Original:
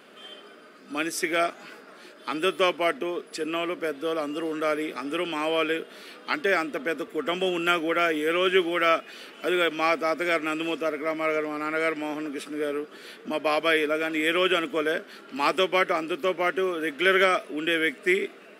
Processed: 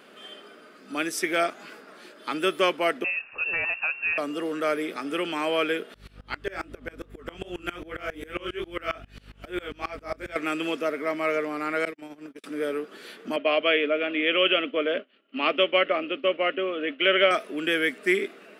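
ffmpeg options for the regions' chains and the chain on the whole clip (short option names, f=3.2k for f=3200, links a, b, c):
-filter_complex "[0:a]asettb=1/sr,asplit=3[a][b][c];[a]atrim=end=3.044[d];[b]atrim=start=3.04:end=4.18,asetpts=PTS-STARTPTS,afade=t=in:d=0.004:c=qsin,afade=t=out:st=1.136:d=0.004:c=qsin,highpass=f=180:t=q:w=1.5,lowpass=f=2.6k:t=q:w=0.5098,lowpass=f=2.6k:t=q:w=0.6013,lowpass=f=2.6k:t=q:w=0.9,lowpass=f=2.6k:t=q:w=2.563,afreqshift=-3000[e];[c]atrim=start=4.176[f];[d][e]acrossfade=d=0.004:c1=hsin:c2=qsin[g];[g][f]acrossfade=d=0.004:c1=qsin:c2=hsin,asettb=1/sr,asplit=3[h][i][j];[h]atrim=end=5.944[k];[i]atrim=start=5.94:end=10.36,asetpts=PTS-STARTPTS,afade=t=in:d=0.004:c=qsin,afade=t=out:st=4.416:d=0.004:c=qsin,flanger=delay=16.5:depth=7.3:speed=2.5,aeval=exprs='val(0)+0.0112*(sin(2*PI*50*n/s)+sin(2*PI*2*50*n/s)/2+sin(2*PI*3*50*n/s)/3+sin(2*PI*4*50*n/s)/4+sin(2*PI*5*50*n/s)/5)':c=same,aeval=exprs='val(0)*pow(10,-25*if(lt(mod(-7.4*n/s,1),2*abs(-7.4)/1000),1-mod(-7.4*n/s,1)/(2*abs(-7.4)/1000),(mod(-7.4*n/s,1)-2*abs(-7.4)/1000)/(1-2*abs(-7.4)/1000))/20)':c=same[l];[j]atrim=start=10.356[m];[k][l]acrossfade=d=0.004:c1=hsin:c2=qsin[n];[n][m]acrossfade=d=0.004:c1=qsin:c2=hsin,asettb=1/sr,asplit=3[o][p][q];[o]atrim=end=11.854[r];[p]atrim=start=11.85:end=12.44,asetpts=PTS-STARTPTS,afade=t=in:d=0.004:c=qsin,afade=t=out:st=0.586:d=0.004:c=qsin,acrossover=split=420|3000[s][t][u];[t]acompressor=threshold=-39dB:ratio=2.5:attack=3.2:release=140:knee=2.83:detection=peak[v];[s][v][u]amix=inputs=3:normalize=0,agate=range=-45dB:threshold=-32dB:ratio=16:release=100:detection=peak[w];[q]atrim=start=12.436[x];[r][w]acrossfade=d=0.004:c1=hsin:c2=qsin[y];[y][x]acrossfade=d=0.004:c1=qsin:c2=hsin,asettb=1/sr,asplit=3[z][aa][ab];[z]atrim=end=13.364[ac];[aa]atrim=start=13.36:end=17.31,asetpts=PTS-STARTPTS,afade=t=in:d=0.004:c=qsin,afade=t=out:st=3.946:d=0.004:c=qsin,agate=range=-33dB:threshold=-34dB:ratio=3:release=100:detection=peak,highpass=250,equalizer=f=260:t=q:w=4:g=7,equalizer=f=370:t=q:w=4:g=-4,equalizer=f=580:t=q:w=4:g=5,equalizer=f=890:t=q:w=4:g=-9,equalizer=f=1.6k:t=q:w=4:g=-6,equalizer=f=2.9k:t=q:w=4:g=10,lowpass=f=3.2k:w=0.5412,lowpass=f=3.2k:w=1.3066[ad];[ab]atrim=start=17.306[ae];[ac][ad]acrossfade=d=0.004:c1=hsin:c2=qsin[af];[af][ae]acrossfade=d=0.004:c1=qsin:c2=hsin"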